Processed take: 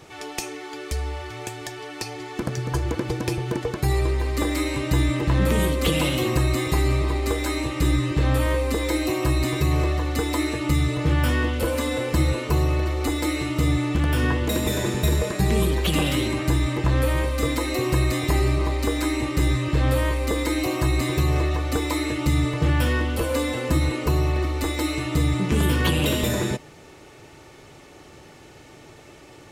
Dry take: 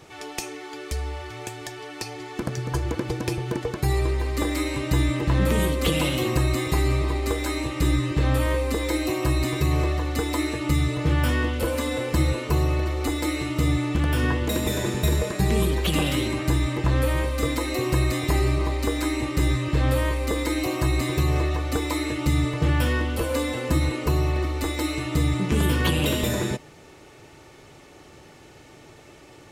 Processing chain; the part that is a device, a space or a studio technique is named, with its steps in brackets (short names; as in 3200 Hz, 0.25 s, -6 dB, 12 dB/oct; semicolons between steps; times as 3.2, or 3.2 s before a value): parallel distortion (in parallel at -13.5 dB: hard clip -23 dBFS, distortion -9 dB)